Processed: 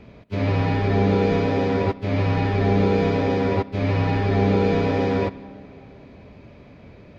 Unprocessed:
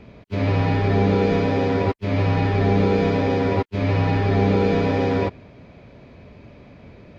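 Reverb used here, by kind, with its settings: digital reverb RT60 3.2 s, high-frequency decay 0.5×, pre-delay 10 ms, DRR 17 dB; gain -1 dB

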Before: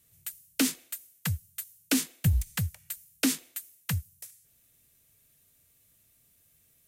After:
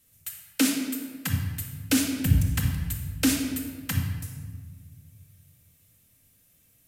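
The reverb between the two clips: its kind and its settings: shoebox room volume 1800 m³, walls mixed, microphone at 2.1 m

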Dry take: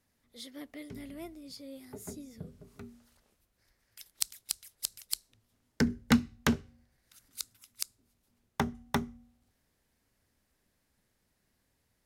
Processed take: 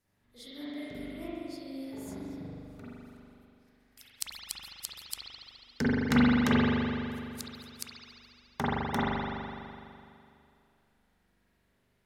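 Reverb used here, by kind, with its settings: spring tank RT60 2.5 s, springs 41 ms, chirp 30 ms, DRR -9.5 dB; gain -5 dB

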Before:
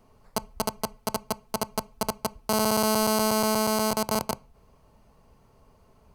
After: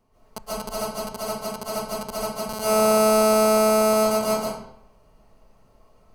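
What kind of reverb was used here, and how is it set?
digital reverb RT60 0.73 s, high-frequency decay 0.8×, pre-delay 0.1 s, DRR -9.5 dB; gain -8 dB

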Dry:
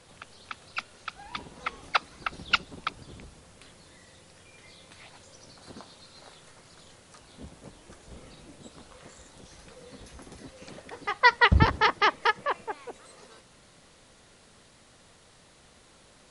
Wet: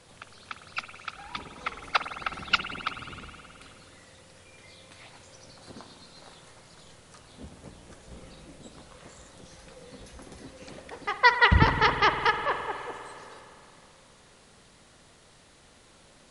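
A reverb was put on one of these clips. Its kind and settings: spring tank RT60 2.8 s, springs 51 ms, chirp 40 ms, DRR 7.5 dB

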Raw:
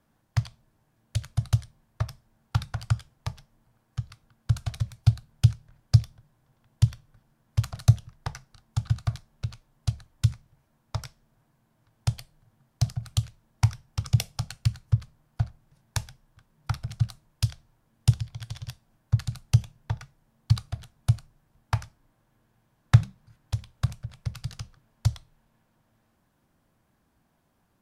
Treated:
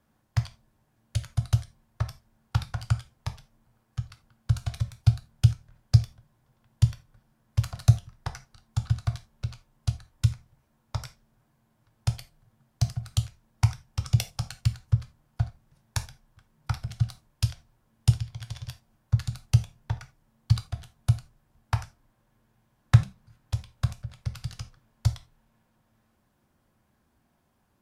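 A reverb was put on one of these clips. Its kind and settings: non-linear reverb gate 0.11 s falling, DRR 8 dB; gain -1 dB

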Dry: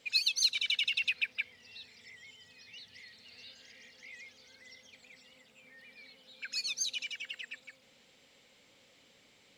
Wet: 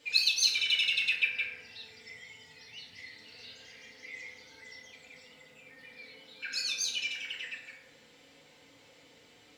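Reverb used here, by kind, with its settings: FDN reverb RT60 1.2 s, low-frequency decay 0.75×, high-frequency decay 0.35×, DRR -4 dB

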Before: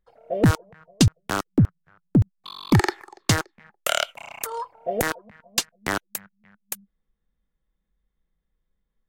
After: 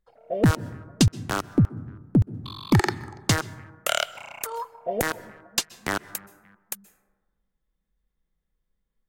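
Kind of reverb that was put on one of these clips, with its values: plate-style reverb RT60 1.3 s, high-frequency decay 0.3×, pre-delay 0.115 s, DRR 18.5 dB; gain -1.5 dB

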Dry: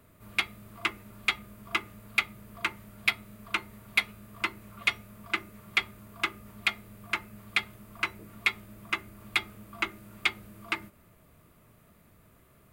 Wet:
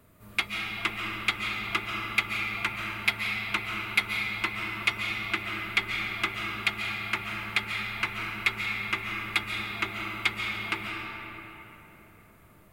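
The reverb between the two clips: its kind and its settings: digital reverb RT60 3.7 s, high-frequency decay 0.55×, pre-delay 0.1 s, DRR -0.5 dB

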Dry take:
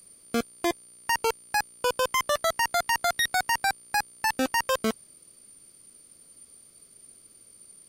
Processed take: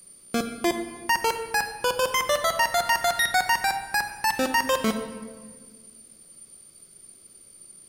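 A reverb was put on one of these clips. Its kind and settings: shoebox room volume 1800 m³, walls mixed, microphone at 1 m; gain +1.5 dB

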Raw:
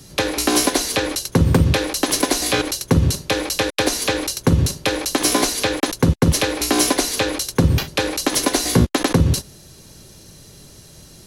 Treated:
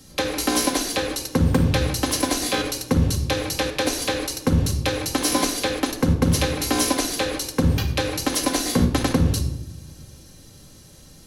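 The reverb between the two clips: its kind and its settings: shoebox room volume 3200 m³, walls furnished, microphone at 2.1 m; gain -5.5 dB

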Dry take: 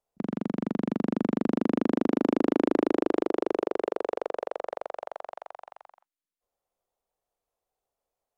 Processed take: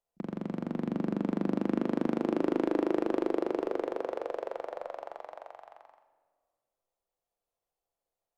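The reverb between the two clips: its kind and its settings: shoebox room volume 2200 m³, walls mixed, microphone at 0.77 m; gain -4.5 dB

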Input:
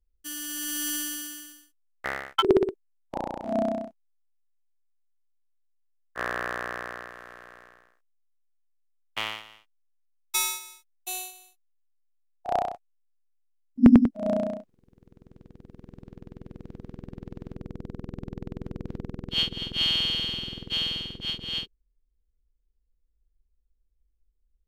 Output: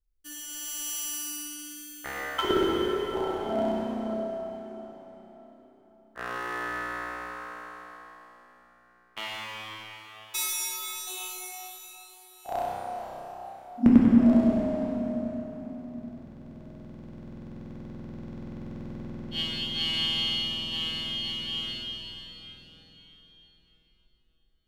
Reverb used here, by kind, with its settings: plate-style reverb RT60 4.5 s, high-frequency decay 0.85×, DRR -6 dB; gain -7 dB

